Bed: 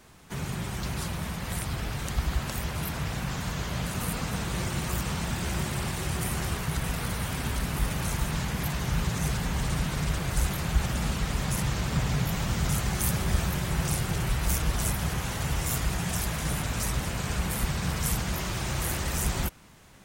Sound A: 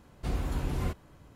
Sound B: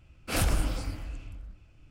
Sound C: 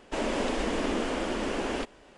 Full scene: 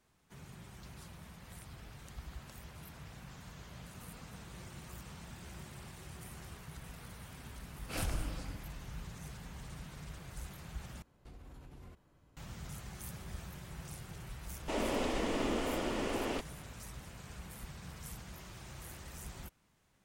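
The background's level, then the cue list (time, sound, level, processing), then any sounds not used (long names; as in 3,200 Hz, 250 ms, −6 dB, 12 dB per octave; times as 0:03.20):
bed −19 dB
0:07.61: mix in B −10 dB
0:11.02: overwrite with A −12 dB + downward compressor 12 to 1, threshold −36 dBFS
0:14.56: mix in C −5 dB + notch filter 1,600 Hz, Q 11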